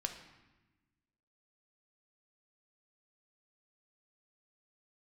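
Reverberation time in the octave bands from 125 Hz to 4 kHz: 1.7 s, 1.7 s, 1.1 s, 1.1 s, 1.1 s, 0.90 s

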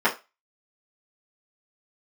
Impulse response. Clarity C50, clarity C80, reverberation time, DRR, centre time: 14.0 dB, 21.0 dB, 0.25 s, -10.0 dB, 15 ms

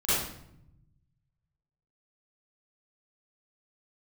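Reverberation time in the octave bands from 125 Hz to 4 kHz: 1.9 s, 1.3 s, 0.80 s, 0.70 s, 0.60 s, 0.55 s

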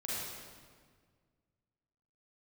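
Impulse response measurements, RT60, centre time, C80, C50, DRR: 1.7 s, 130 ms, -1.5 dB, -4.5 dB, -8.0 dB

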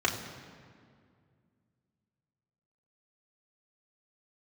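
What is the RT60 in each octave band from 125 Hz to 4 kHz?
3.0 s, 2.9 s, 2.3 s, 2.0 s, 1.8 s, 1.4 s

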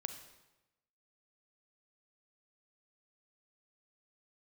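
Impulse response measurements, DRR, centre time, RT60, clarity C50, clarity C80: 7.5 dB, 17 ms, 1.0 s, 9.0 dB, 11.0 dB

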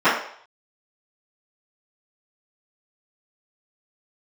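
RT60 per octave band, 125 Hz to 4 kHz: 0.35 s, 0.40 s, 0.55 s, 0.60 s, 0.55 s, 0.60 s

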